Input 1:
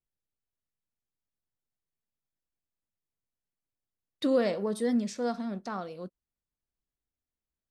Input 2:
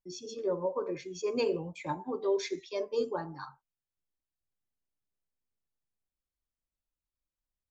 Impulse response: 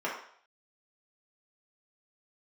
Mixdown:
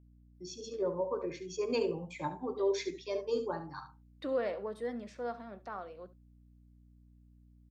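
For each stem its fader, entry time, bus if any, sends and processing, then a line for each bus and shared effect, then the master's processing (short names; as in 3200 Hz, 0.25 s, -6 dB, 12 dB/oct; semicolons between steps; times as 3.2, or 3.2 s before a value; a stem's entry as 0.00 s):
-4.5 dB, 0.00 s, no send, echo send -18.5 dB, three-band isolator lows -15 dB, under 360 Hz, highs -16 dB, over 2900 Hz; hum 60 Hz, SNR 16 dB
-2.0 dB, 0.35 s, no send, echo send -11.5 dB, dry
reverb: off
echo: echo 71 ms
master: dry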